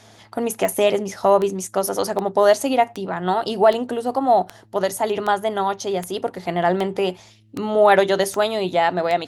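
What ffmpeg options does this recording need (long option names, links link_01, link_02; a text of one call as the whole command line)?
ffmpeg -i in.wav -af "adeclick=threshold=4,bandreject=frequency=107.8:width_type=h:width=4,bandreject=frequency=215.6:width_type=h:width=4,bandreject=frequency=323.4:width_type=h:width=4" out.wav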